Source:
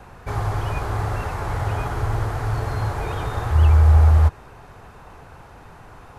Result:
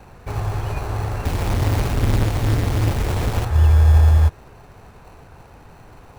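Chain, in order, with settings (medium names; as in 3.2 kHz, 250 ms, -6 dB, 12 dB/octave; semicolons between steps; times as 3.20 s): 1.25–3.45 s: square wave that keeps the level; in parallel at -4.5 dB: sample-rate reducer 1.7 kHz, jitter 0%; on the sum: trim -3.5 dB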